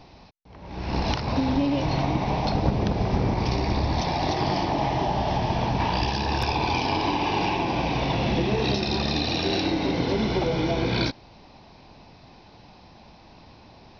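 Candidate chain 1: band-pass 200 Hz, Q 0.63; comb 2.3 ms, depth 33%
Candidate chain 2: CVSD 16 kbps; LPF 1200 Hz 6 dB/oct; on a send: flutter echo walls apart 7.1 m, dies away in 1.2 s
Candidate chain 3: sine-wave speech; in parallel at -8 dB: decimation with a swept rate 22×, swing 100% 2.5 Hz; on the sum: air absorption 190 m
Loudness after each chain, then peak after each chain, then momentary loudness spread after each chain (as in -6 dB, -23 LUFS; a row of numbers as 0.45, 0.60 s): -29.0, -23.0, -23.5 LUFS; -13.0, -9.5, -7.0 dBFS; 4, 3, 7 LU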